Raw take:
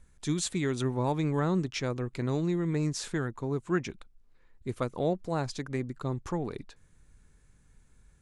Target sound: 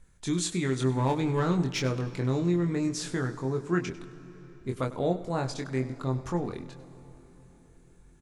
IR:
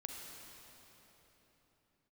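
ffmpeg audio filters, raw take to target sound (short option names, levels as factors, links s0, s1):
-filter_complex "[0:a]asettb=1/sr,asplit=3[s0][s1][s2];[s0]atrim=end=0.894[s3];[s1]atrim=start=0.89:end=1.99,asetpts=PTS-STARTPTS,afade=t=in:d=0.004:c=qsin,afade=t=out:st=1.096:d=0.004:c=qsin,aeval=exprs='0.133*(cos(1*acos(clip(val(0)/0.133,-1,1)))-cos(1*PI/2))+0.0119*(cos(5*acos(clip(val(0)/0.133,-1,1)))-cos(5*PI/2))+0.00237*(cos(8*acos(clip(val(0)/0.133,-1,1)))-cos(8*PI/2))':c=same[s4];[s2]atrim=start=1.986[s5];[s3][s4]acrossfade=d=0.004:c1=hsin:c2=qsin[s6];[s6][s5]acrossfade=d=0.004:c1=qsin:c2=hsin,asplit=2[s7][s8];[s8]adelay=23,volume=0.596[s9];[s7][s9]amix=inputs=2:normalize=0,asplit=2[s10][s11];[1:a]atrim=start_sample=2205,adelay=99[s12];[s11][s12]afir=irnorm=-1:irlink=0,volume=0.266[s13];[s10][s13]amix=inputs=2:normalize=0"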